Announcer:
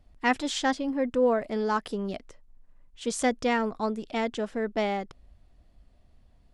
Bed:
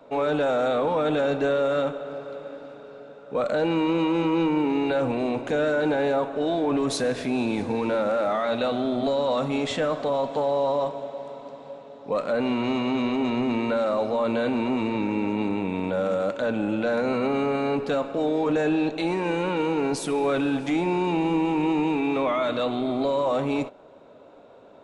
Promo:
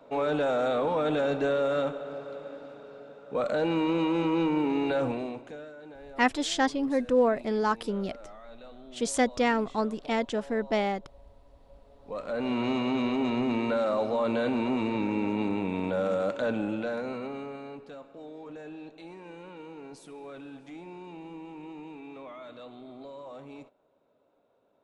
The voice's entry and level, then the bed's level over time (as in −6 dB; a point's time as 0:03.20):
5.95 s, +0.5 dB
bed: 0:05.07 −3.5 dB
0:05.74 −23.5 dB
0:11.44 −23.5 dB
0:12.58 −3 dB
0:16.50 −3 dB
0:17.92 −20 dB